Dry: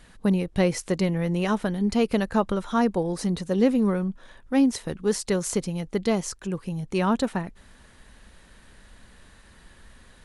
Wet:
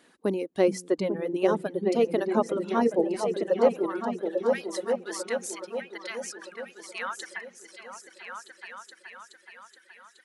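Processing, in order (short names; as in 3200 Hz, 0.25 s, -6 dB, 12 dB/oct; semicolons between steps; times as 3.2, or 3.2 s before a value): high-pass sweep 320 Hz -> 1600 Hz, 3.31–4.27; dynamic EQ 590 Hz, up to +4 dB, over -30 dBFS, Q 0.91; repeats that get brighter 0.423 s, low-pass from 200 Hz, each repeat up 2 oct, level 0 dB; reverb removal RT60 1.9 s; gain -5.5 dB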